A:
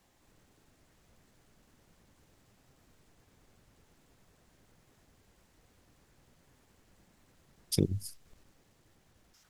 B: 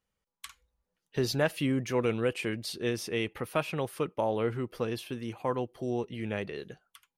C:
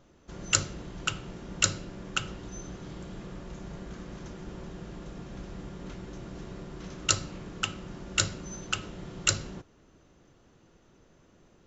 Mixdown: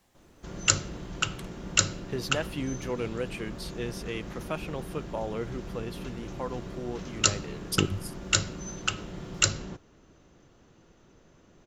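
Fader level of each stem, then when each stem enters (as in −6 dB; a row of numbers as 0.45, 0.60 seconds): +1.5, −4.5, +2.0 decibels; 0.00, 0.95, 0.15 seconds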